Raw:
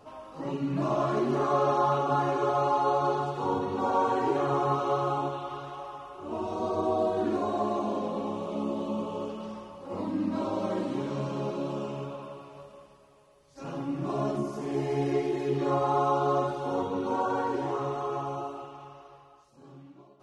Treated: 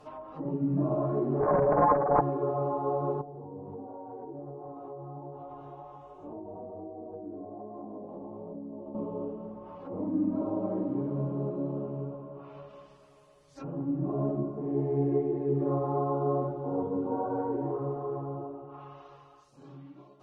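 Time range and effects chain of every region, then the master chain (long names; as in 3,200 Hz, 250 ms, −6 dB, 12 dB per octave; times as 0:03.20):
0:01.40–0:02.21: spectral envelope exaggerated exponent 3 + parametric band 1,000 Hz +14.5 dB 0.91 octaves + highs frequency-modulated by the lows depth 0.49 ms
0:03.21–0:08.95: chorus effect 1.3 Hz, delay 18 ms, depth 2.7 ms + downward compressor 12 to 1, threshold −36 dBFS + flat-topped bell 2,400 Hz −12 dB 2.5 octaves
whole clip: comb filter 6.6 ms, depth 41%; treble cut that deepens with the level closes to 600 Hz, closed at −36.5 dBFS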